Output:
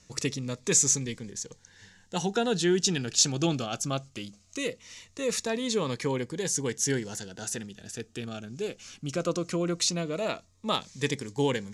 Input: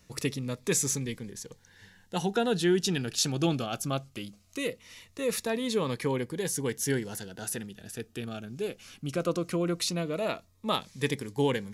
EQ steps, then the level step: resonant low-pass 7 kHz, resonance Q 2.5; 0.0 dB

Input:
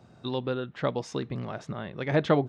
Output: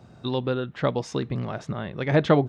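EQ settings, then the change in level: bass shelf 110 Hz +5.5 dB; +3.5 dB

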